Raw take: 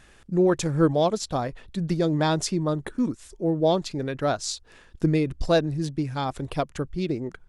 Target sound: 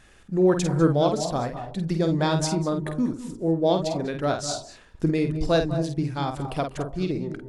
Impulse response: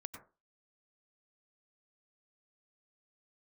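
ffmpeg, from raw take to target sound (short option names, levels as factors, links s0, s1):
-filter_complex "[0:a]asplit=2[s0][s1];[1:a]atrim=start_sample=2205,asetrate=27783,aresample=44100,adelay=49[s2];[s1][s2]afir=irnorm=-1:irlink=0,volume=0.631[s3];[s0][s3]amix=inputs=2:normalize=0,volume=0.891"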